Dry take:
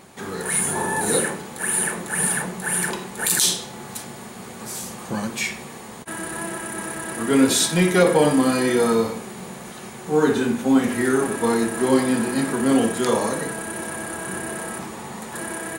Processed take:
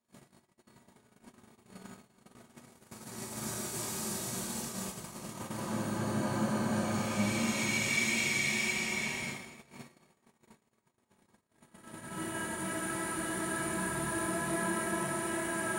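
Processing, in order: Paulstretch 6.3×, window 0.50 s, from 4.13 s; simulated room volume 2300 m³, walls furnished, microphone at 2.8 m; gate -30 dBFS, range -43 dB; trim -7.5 dB

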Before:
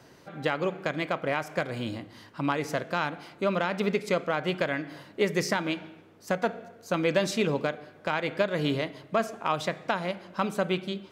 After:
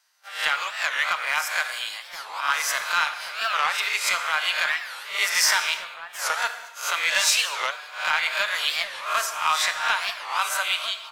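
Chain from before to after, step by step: reverse spectral sustain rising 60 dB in 0.45 s; high-pass 1 kHz 24 dB/octave; gate -52 dBFS, range -20 dB; treble shelf 3.7 kHz +11 dB; comb 6.5 ms, depth 36%; in parallel at -3.5 dB: saturation -22 dBFS, distortion -12 dB; on the sum: echo from a far wall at 290 m, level -8 dB; gated-style reverb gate 360 ms falling, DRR 8.5 dB; warped record 45 rpm, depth 250 cents; trim +1 dB

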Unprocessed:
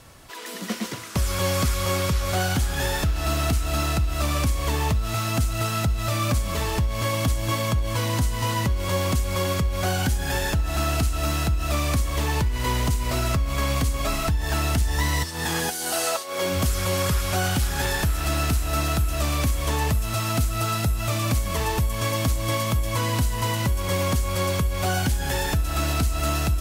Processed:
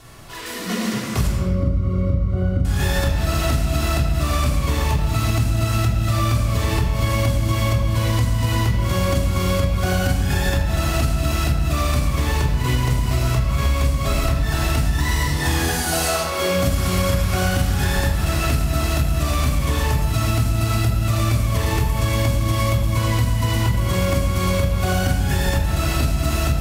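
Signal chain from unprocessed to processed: 1.27–2.65 s: boxcar filter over 52 samples; simulated room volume 1300 m³, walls mixed, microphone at 3.3 m; compression, threshold -15 dBFS, peak gain reduction 8 dB

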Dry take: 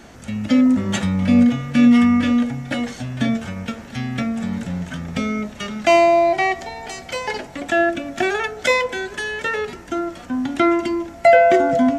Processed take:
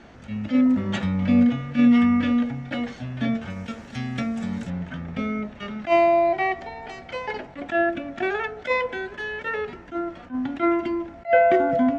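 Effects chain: low-pass 3.7 kHz 12 dB/octave, from 3.50 s 8 kHz, from 4.70 s 2.8 kHz; attacks held to a fixed rise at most 290 dB/s; trim -4 dB

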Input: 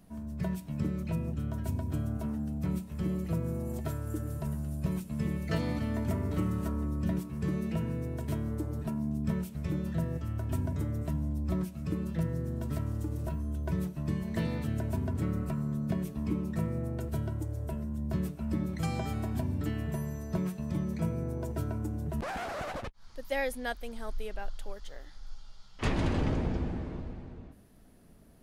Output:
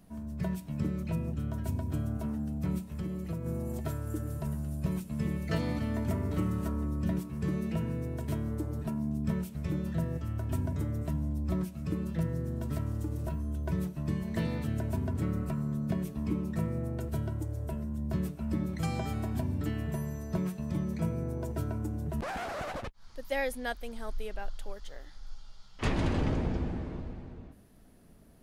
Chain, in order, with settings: 2.91–3.46 s: compression, threshold -32 dBFS, peak gain reduction 6 dB

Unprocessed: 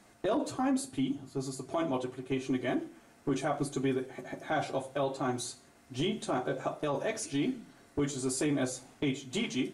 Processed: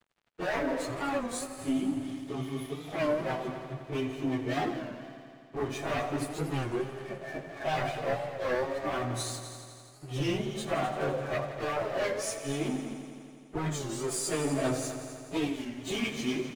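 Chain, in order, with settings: local Wiener filter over 9 samples; spectral replace 1.22–1.71 s, 1.7–9.5 kHz after; comb 1.7 ms, depth 35%; sine folder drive 7 dB, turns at -20.5 dBFS; flange 0.49 Hz, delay 4.9 ms, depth 6 ms, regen -12%; plain phase-vocoder stretch 1.7×; crossover distortion -49.5 dBFS; multi-head delay 84 ms, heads all three, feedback 60%, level -15 dB; warped record 33 1/3 rpm, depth 160 cents

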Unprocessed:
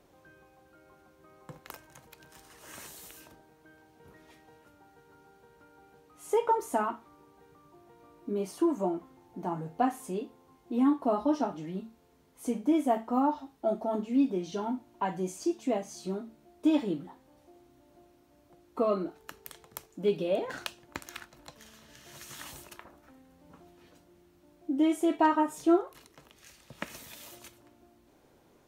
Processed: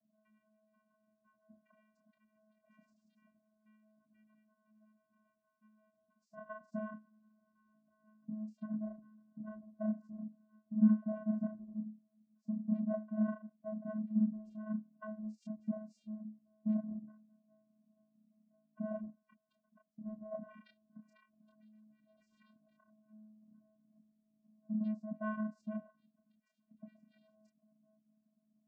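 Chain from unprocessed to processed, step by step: in parallel at -7.5 dB: hard clipper -29.5 dBFS, distortion -6 dB; on the sum: loudest bins only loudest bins 8; chorus voices 4, 0.12 Hz, delay 27 ms, depth 4.6 ms; vocoder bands 8, square 215 Hz; trim -6.5 dB

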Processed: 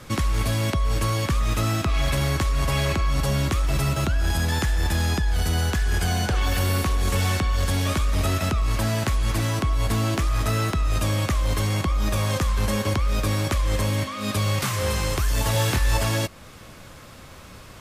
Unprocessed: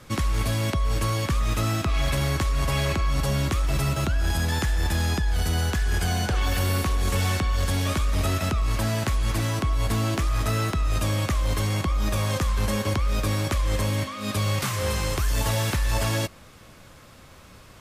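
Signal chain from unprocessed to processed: in parallel at -2.5 dB: compression, threshold -35 dBFS, peak gain reduction 14 dB; 15.52–15.97 s: on the sum: doubling 25 ms -4 dB

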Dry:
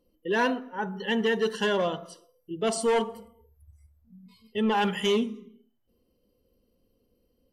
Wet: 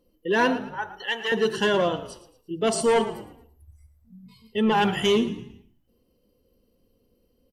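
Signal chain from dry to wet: 0.74–1.32 s: high-pass 820 Hz 12 dB/octave; frequency-shifting echo 113 ms, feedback 38%, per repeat -54 Hz, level -14.5 dB; trim +3.5 dB

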